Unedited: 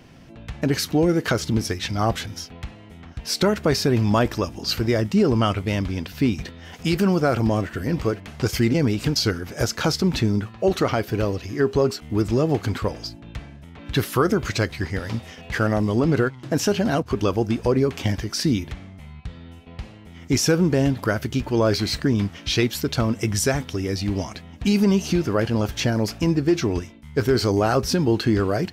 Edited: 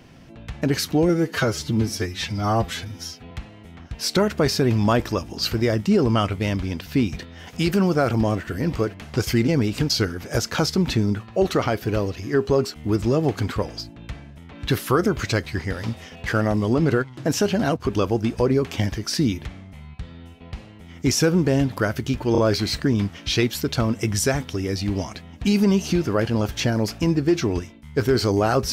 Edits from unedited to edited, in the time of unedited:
1.09–2.57 stretch 1.5×
21.58 stutter 0.03 s, 3 plays

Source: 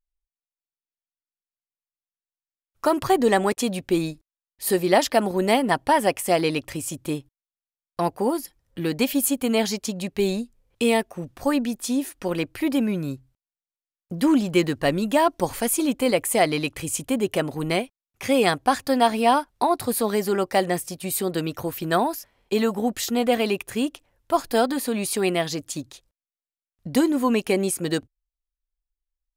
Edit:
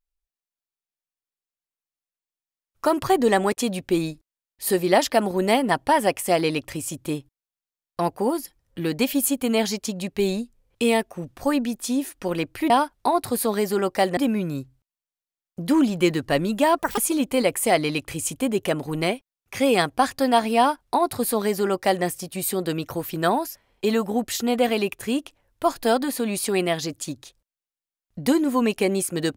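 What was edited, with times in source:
15.31–15.66 speed 178%
19.26–20.73 copy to 12.7

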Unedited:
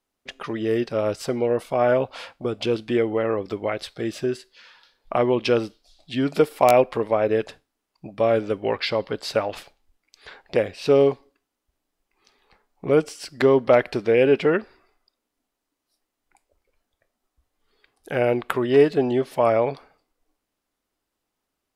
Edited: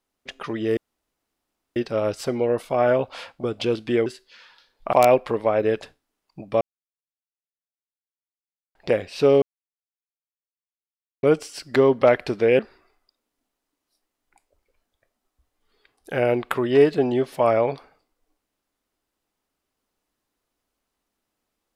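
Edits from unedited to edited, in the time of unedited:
0.77 insert room tone 0.99 s
3.07–4.31 cut
5.18–6.59 cut
8.27–10.41 mute
11.08–12.89 mute
14.25–14.58 cut

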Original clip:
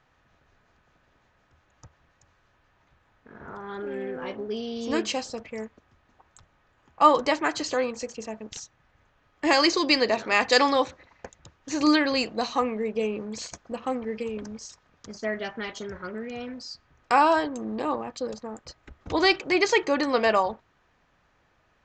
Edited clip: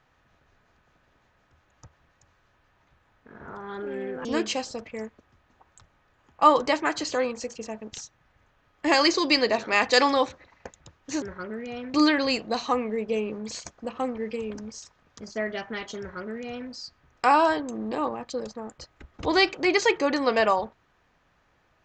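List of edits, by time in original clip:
4.25–4.84 cut
15.86–16.58 copy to 11.81

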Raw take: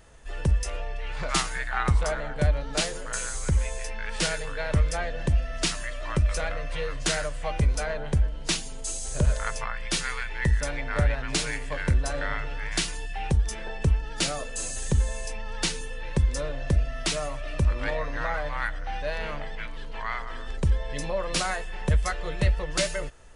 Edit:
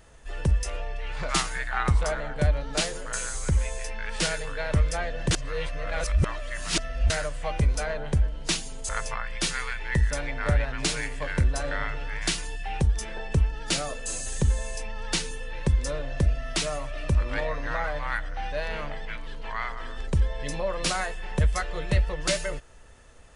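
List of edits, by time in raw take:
5.31–7.1 reverse
8.89–9.39 cut

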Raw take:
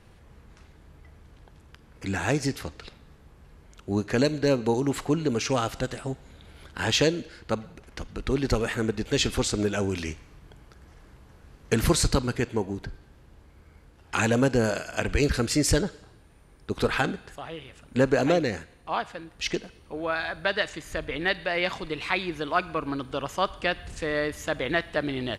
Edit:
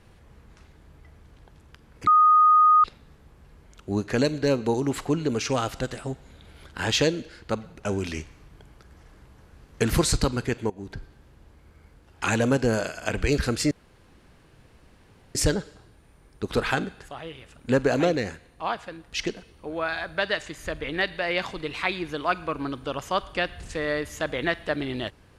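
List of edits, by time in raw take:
2.07–2.84 bleep 1240 Hz -13 dBFS
7.85–9.76 cut
12.61–12.88 fade in, from -16.5 dB
15.62 insert room tone 1.64 s

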